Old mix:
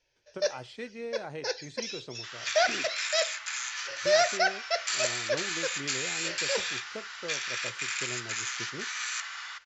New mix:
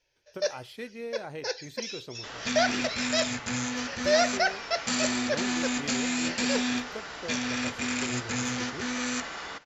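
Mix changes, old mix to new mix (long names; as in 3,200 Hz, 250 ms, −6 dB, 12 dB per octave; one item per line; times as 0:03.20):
speech: remove elliptic band-pass filter 120–7,900 Hz
second sound: remove high-pass filter 1,200 Hz 24 dB per octave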